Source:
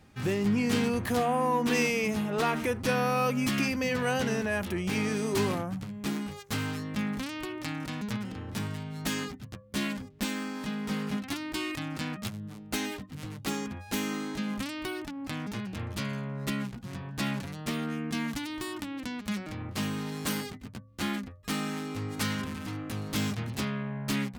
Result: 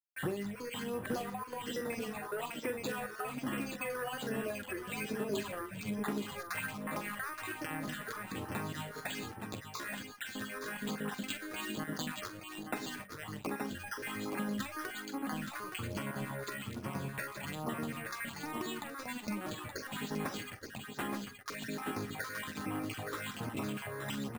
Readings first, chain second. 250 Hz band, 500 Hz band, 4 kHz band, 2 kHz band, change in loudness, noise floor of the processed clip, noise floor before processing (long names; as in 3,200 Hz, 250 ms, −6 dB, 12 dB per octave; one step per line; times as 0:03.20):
−9.0 dB, −7.5 dB, −7.5 dB, −5.0 dB, −7.5 dB, −49 dBFS, −47 dBFS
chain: time-frequency cells dropped at random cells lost 35%
notch filter 2,200 Hz, Q 19
gain on a spectral selection 0:06.58–0:07.36, 510–2,700 Hz +10 dB
meter weighting curve A
noise gate with hold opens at −50 dBFS
low-shelf EQ 99 Hz +11.5 dB
downward compressor 12 to 1, threshold −42 dBFS, peak gain reduction 17 dB
dead-zone distortion −59 dBFS
all-pass phaser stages 6, 1.2 Hz, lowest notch 190–4,700 Hz
multi-tap delay 44/768/872/881 ms −11.5/−19.5/−8/−11 dB
bad sample-rate conversion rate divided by 4×, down filtered, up hold
level +10 dB